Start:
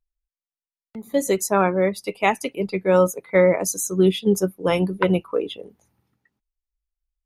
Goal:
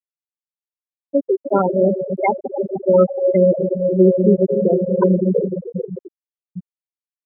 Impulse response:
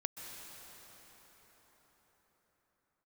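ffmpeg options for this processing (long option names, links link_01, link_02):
-filter_complex "[1:a]atrim=start_sample=2205,asetrate=34398,aresample=44100[link_01];[0:a][link_01]afir=irnorm=-1:irlink=0,acrusher=bits=7:dc=4:mix=0:aa=0.000001,afftfilt=real='re*gte(hypot(re,im),0.501)':imag='im*gte(hypot(re,im),0.501)':win_size=1024:overlap=0.75,volume=4.5dB"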